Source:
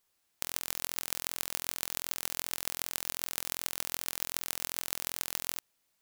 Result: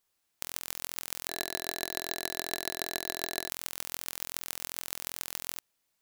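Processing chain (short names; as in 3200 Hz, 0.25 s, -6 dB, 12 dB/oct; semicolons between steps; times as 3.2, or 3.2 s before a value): 1.28–3.49 small resonant body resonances 380/660/1700/4000 Hz, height 16 dB, ringing for 25 ms; gain -2 dB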